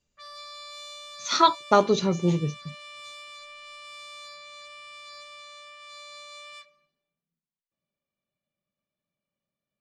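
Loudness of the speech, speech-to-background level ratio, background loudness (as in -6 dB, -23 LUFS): -23.0 LUFS, 19.5 dB, -42.5 LUFS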